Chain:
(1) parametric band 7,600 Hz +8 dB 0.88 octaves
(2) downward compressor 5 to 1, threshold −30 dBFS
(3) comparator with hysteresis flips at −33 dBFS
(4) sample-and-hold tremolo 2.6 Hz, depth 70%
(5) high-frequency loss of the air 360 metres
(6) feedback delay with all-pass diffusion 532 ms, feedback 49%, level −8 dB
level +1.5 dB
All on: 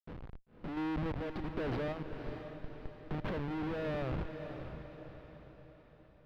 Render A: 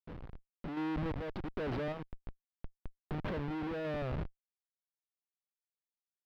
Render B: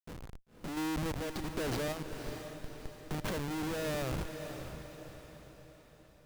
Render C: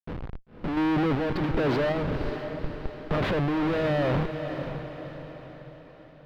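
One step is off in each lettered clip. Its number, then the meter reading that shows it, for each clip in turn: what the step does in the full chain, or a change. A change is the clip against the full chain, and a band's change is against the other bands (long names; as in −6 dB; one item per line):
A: 6, echo-to-direct ratio −7.0 dB to none audible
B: 5, 4 kHz band +8.0 dB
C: 2, change in integrated loudness +12.0 LU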